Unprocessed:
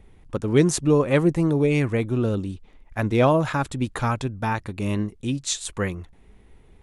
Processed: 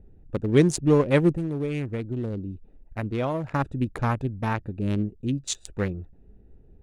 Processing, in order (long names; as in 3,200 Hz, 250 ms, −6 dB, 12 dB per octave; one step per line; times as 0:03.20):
adaptive Wiener filter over 41 samples
0:01.35–0:03.54: downward compressor 2 to 1, threshold −31 dBFS, peak gain reduction 9.5 dB